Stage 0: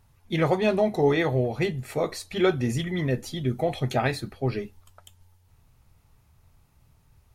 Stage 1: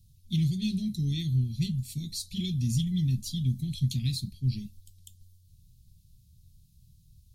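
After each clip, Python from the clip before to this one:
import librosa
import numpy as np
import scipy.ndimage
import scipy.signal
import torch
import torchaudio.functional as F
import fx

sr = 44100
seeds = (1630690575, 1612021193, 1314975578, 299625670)

y = scipy.signal.sosfilt(scipy.signal.ellip(3, 1.0, 50, [190.0, 3800.0], 'bandstop', fs=sr, output='sos'), x)
y = y * 10.0 ** (2.5 / 20.0)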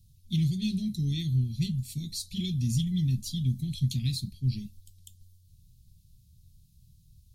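y = x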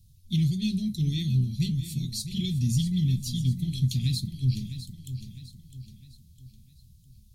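y = fx.echo_feedback(x, sr, ms=656, feedback_pct=44, wet_db=-11.5)
y = y * 10.0 ** (2.0 / 20.0)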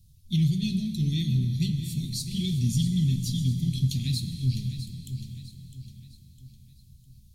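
y = fx.rev_plate(x, sr, seeds[0], rt60_s=3.4, hf_ratio=0.85, predelay_ms=0, drr_db=7.5)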